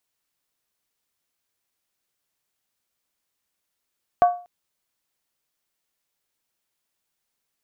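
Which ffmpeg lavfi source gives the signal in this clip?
-f lavfi -i "aevalsrc='0.355*pow(10,-3*t/0.37)*sin(2*PI*709*t)+0.0944*pow(10,-3*t/0.293)*sin(2*PI*1130.1*t)+0.0251*pow(10,-3*t/0.253)*sin(2*PI*1514.4*t)+0.00668*pow(10,-3*t/0.244)*sin(2*PI*1627.9*t)+0.00178*pow(10,-3*t/0.227)*sin(2*PI*1881*t)':d=0.24:s=44100"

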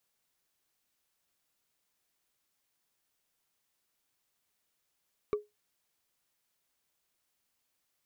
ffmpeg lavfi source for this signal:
-f lavfi -i "aevalsrc='0.0708*pow(10,-3*t/0.19)*sin(2*PI*418*t)+0.0251*pow(10,-3*t/0.056)*sin(2*PI*1152.4*t)+0.00891*pow(10,-3*t/0.025)*sin(2*PI*2258.9*t)+0.00316*pow(10,-3*t/0.014)*sin(2*PI*3734*t)+0.00112*pow(10,-3*t/0.008)*sin(2*PI*5576.1*t)':d=0.45:s=44100"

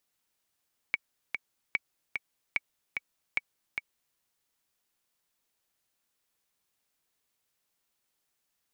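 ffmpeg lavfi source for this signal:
-f lavfi -i "aevalsrc='pow(10,(-13.5-5*gte(mod(t,2*60/148),60/148))/20)*sin(2*PI*2260*mod(t,60/148))*exp(-6.91*mod(t,60/148)/0.03)':d=3.24:s=44100"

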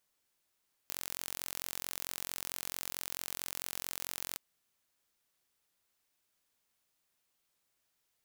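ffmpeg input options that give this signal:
-f lavfi -i "aevalsrc='0.266*eq(mod(n,991),0)':d=3.47:s=44100"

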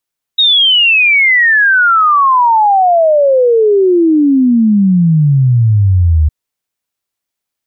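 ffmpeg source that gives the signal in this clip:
-f lavfi -i "aevalsrc='0.531*clip(min(t,5.91-t)/0.01,0,1)*sin(2*PI*3800*5.91/log(74/3800)*(exp(log(74/3800)*t/5.91)-1))':d=5.91:s=44100"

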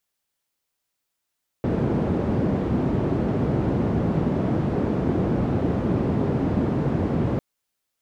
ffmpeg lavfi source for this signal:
-f lavfi -i "anoisesrc=c=white:d=5.75:r=44100:seed=1,highpass=f=83,lowpass=f=280,volume=2.3dB"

